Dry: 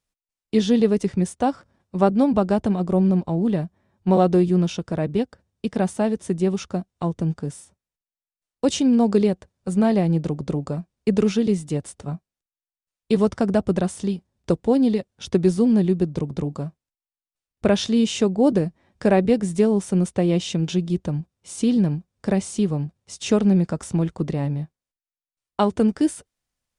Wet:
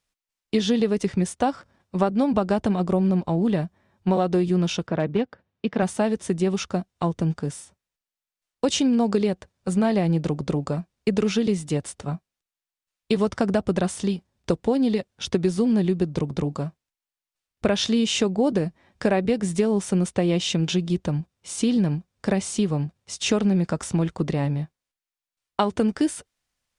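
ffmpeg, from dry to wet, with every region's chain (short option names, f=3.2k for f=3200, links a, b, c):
-filter_complex "[0:a]asettb=1/sr,asplit=3[a][b][c];[a]atrim=end=4.874[d];[b]atrim=start=4.87:end=5.83,asetpts=PTS-STARTPTS,afade=t=in:d=0.004:c=qsin,afade=t=out:st=0.956:d=0.004:c=qsin,highpass=110,lowpass=3k,asoftclip=type=hard:threshold=-13.5dB[e];[c]atrim=start=5.826[f];[d][e]acrossfade=d=0.004:c1=hsin:c2=qsin[g];[g][f]acrossfade=d=0.004:c1=qsin:c2=hsin,equalizer=f=2.5k:w=0.31:g=5.5,acompressor=threshold=-17dB:ratio=6"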